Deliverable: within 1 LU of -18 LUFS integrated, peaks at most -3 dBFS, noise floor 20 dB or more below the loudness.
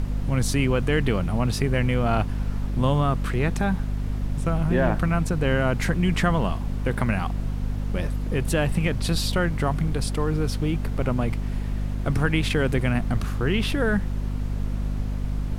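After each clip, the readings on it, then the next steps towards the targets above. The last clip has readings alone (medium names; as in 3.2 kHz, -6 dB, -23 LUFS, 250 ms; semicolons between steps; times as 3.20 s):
hum 50 Hz; highest harmonic 250 Hz; hum level -24 dBFS; noise floor -29 dBFS; noise floor target -45 dBFS; loudness -25.0 LUFS; peak level -8.5 dBFS; loudness target -18.0 LUFS
-> de-hum 50 Hz, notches 5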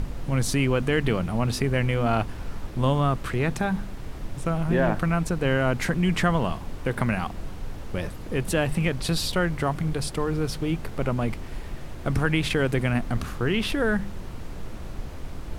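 hum not found; noise floor -36 dBFS; noise floor target -46 dBFS
-> noise print and reduce 10 dB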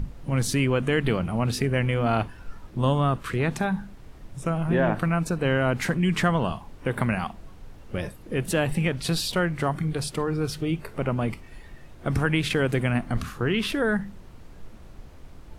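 noise floor -45 dBFS; noise floor target -46 dBFS
-> noise print and reduce 6 dB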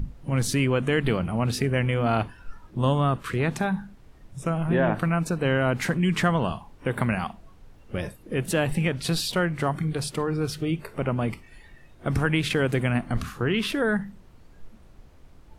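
noise floor -51 dBFS; loudness -26.0 LUFS; peak level -10.0 dBFS; loudness target -18.0 LUFS
-> trim +8 dB; peak limiter -3 dBFS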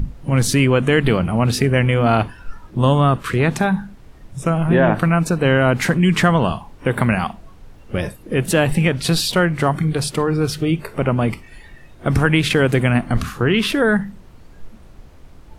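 loudness -18.0 LUFS; peak level -3.0 dBFS; noise floor -43 dBFS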